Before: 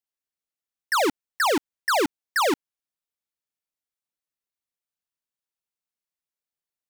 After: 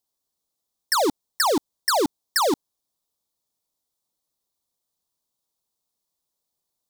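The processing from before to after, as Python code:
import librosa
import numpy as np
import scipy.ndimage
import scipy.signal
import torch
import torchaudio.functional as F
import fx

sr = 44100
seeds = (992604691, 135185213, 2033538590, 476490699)

p1 = fx.band_shelf(x, sr, hz=2000.0, db=-12.5, octaves=1.3)
p2 = fx.over_compress(p1, sr, threshold_db=-29.0, ratio=-0.5)
y = p1 + F.gain(torch.from_numpy(p2), 0.5).numpy()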